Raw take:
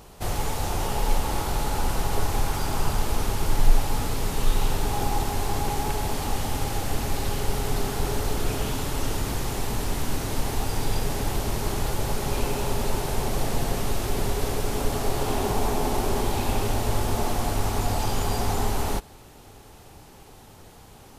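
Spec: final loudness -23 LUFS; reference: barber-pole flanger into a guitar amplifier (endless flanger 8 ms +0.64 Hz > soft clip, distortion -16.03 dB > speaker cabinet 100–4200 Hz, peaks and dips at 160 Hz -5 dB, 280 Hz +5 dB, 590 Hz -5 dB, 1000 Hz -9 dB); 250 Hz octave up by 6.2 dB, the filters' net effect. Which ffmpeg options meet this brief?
-filter_complex "[0:a]equalizer=f=250:t=o:g=5.5,asplit=2[a][b];[b]adelay=8,afreqshift=0.64[c];[a][c]amix=inputs=2:normalize=1,asoftclip=threshold=-19dB,highpass=100,equalizer=f=160:t=q:w=4:g=-5,equalizer=f=280:t=q:w=4:g=5,equalizer=f=590:t=q:w=4:g=-5,equalizer=f=1k:t=q:w=4:g=-9,lowpass=f=4.2k:w=0.5412,lowpass=f=4.2k:w=1.3066,volume=10dB"

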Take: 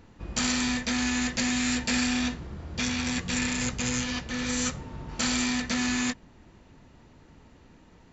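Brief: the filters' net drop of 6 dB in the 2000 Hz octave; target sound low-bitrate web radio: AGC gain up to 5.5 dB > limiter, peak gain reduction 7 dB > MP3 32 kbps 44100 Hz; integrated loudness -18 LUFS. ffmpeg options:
-af "equalizer=f=2k:t=o:g=-7.5,dynaudnorm=m=5.5dB,alimiter=limit=-20.5dB:level=0:latency=1,volume=13dB" -ar 44100 -c:a libmp3lame -b:a 32k

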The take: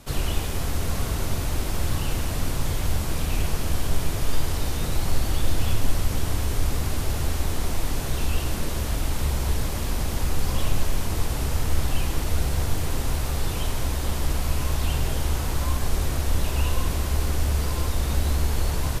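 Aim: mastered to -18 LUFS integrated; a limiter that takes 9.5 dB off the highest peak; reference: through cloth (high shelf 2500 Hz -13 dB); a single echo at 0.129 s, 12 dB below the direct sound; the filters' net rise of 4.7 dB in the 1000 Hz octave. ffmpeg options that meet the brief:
-af "equalizer=f=1k:t=o:g=8,alimiter=limit=-16.5dB:level=0:latency=1,highshelf=f=2.5k:g=-13,aecho=1:1:129:0.251,volume=11.5dB"

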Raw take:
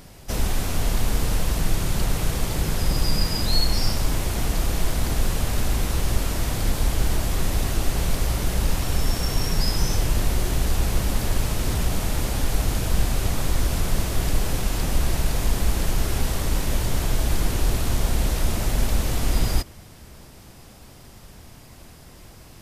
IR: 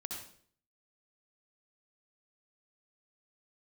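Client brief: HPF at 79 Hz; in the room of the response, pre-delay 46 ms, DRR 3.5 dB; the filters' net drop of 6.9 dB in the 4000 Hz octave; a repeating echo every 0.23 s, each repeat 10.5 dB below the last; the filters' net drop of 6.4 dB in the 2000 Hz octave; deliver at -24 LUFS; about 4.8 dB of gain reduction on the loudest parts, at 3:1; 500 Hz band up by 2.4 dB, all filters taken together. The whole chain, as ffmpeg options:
-filter_complex "[0:a]highpass=79,equalizer=f=500:t=o:g=3.5,equalizer=f=2k:t=o:g=-6.5,equalizer=f=4k:t=o:g=-7.5,acompressor=threshold=-29dB:ratio=3,aecho=1:1:230|460|690:0.299|0.0896|0.0269,asplit=2[a][b];[1:a]atrim=start_sample=2205,adelay=46[c];[b][c]afir=irnorm=-1:irlink=0,volume=-2.5dB[d];[a][d]amix=inputs=2:normalize=0,volume=6dB"

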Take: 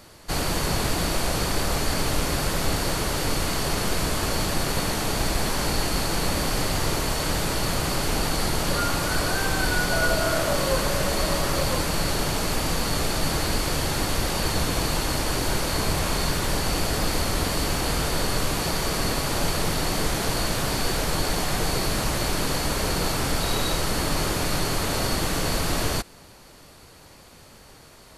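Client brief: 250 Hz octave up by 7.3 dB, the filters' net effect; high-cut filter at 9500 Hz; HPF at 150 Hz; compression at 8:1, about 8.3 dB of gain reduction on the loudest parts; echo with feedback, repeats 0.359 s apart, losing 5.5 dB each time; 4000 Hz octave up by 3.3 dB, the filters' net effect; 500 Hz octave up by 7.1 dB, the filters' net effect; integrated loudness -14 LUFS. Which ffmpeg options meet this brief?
-af "highpass=150,lowpass=9.5k,equalizer=f=250:t=o:g=8.5,equalizer=f=500:t=o:g=6.5,equalizer=f=4k:t=o:g=4,acompressor=threshold=-23dB:ratio=8,aecho=1:1:359|718|1077|1436|1795|2154|2513:0.531|0.281|0.149|0.079|0.0419|0.0222|0.0118,volume=11dB"

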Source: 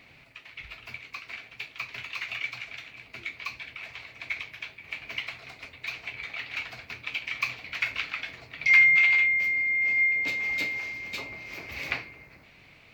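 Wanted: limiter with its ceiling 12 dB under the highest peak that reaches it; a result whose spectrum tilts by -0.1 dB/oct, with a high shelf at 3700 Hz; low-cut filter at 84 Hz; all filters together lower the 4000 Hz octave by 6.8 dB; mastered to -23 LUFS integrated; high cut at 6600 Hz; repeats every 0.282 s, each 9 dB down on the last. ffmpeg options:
-af "highpass=84,lowpass=6.6k,highshelf=f=3.7k:g=-7,equalizer=f=4k:t=o:g=-5,alimiter=limit=-22dB:level=0:latency=1,aecho=1:1:282|564|846|1128:0.355|0.124|0.0435|0.0152,volume=7.5dB"

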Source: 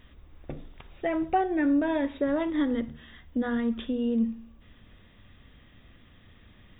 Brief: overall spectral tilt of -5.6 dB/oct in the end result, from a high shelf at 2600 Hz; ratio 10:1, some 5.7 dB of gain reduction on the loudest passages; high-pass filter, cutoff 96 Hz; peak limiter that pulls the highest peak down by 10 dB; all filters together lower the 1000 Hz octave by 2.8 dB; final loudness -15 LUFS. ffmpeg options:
-af "highpass=96,equalizer=f=1k:t=o:g=-3.5,highshelf=f=2.6k:g=-7,acompressor=threshold=-27dB:ratio=10,volume=23dB,alimiter=limit=-7dB:level=0:latency=1"

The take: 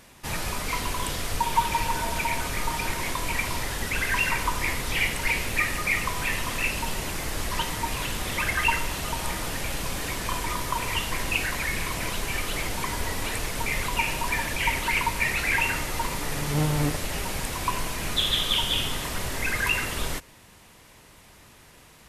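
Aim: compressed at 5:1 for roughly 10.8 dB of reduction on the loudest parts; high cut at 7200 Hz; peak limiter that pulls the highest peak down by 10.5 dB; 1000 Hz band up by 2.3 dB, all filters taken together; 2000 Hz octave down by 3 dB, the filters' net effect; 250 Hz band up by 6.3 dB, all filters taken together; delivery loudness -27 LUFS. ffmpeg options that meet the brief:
-af "lowpass=7.2k,equalizer=f=250:t=o:g=8.5,equalizer=f=1k:t=o:g=3,equalizer=f=2k:t=o:g=-4.5,acompressor=threshold=-27dB:ratio=5,volume=8.5dB,alimiter=limit=-17.5dB:level=0:latency=1"

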